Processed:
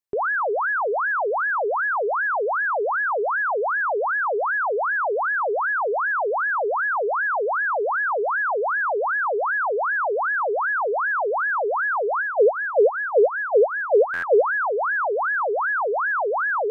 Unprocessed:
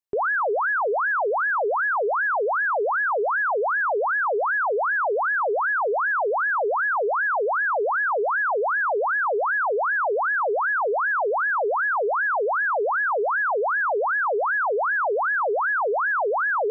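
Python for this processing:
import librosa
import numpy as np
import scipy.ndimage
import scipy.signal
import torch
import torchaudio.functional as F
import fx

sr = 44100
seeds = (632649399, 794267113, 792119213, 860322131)

y = fx.graphic_eq_10(x, sr, hz=(125, 250, 500, 1000), db=(3, 7, 10, -11), at=(12.21, 14.42), fade=0.02)
y = fx.buffer_glitch(y, sr, at_s=(14.13,), block=512, repeats=8)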